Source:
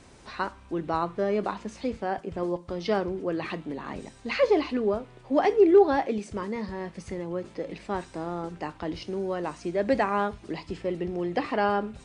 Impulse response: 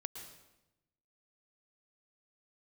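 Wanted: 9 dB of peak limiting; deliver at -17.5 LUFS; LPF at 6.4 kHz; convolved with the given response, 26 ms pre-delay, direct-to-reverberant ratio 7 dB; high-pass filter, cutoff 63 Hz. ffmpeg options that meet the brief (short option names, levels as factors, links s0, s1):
-filter_complex "[0:a]highpass=63,lowpass=6400,alimiter=limit=0.126:level=0:latency=1,asplit=2[s0][s1];[1:a]atrim=start_sample=2205,adelay=26[s2];[s1][s2]afir=irnorm=-1:irlink=0,volume=0.596[s3];[s0][s3]amix=inputs=2:normalize=0,volume=4.22"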